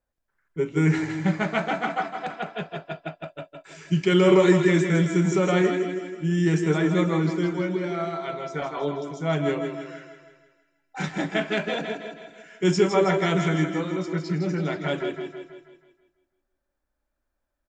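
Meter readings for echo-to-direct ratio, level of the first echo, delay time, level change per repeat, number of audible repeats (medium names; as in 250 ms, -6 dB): -5.0 dB, -6.0 dB, 161 ms, -6.0 dB, 5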